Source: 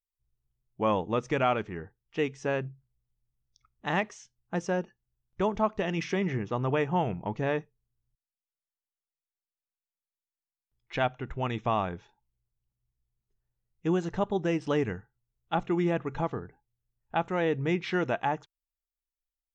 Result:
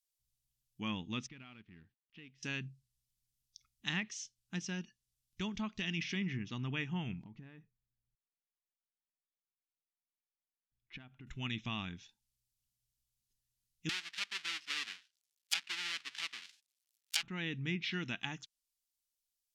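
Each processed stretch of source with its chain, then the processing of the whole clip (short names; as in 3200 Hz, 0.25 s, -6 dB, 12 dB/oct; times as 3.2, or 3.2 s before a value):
1.27–2.43 G.711 law mismatch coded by A + compressor 2:1, threshold -49 dBFS + air absorption 400 m
7.23–11.27 LPF 1400 Hz + compressor, threshold -39 dBFS
13.89–17.23 half-waves squared off + HPF 1300 Hz
whole clip: EQ curve 250 Hz 0 dB, 540 Hz -24 dB, 1200 Hz -12 dB, 2900 Hz +7 dB, 5000 Hz +12 dB; treble ducked by the level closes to 2100 Hz, closed at -26 dBFS; low shelf 170 Hz -8 dB; gain -3 dB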